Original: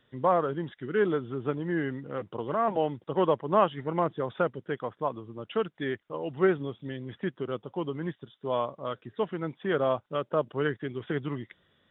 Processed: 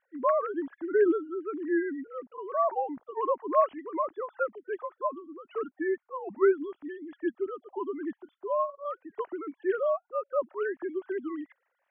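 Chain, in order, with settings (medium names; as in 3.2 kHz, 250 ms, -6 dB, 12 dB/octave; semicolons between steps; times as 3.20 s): formants replaced by sine waves; Bessel low-pass 1.4 kHz, order 4; peaking EQ 470 Hz -10.5 dB 0.39 oct; trim +3.5 dB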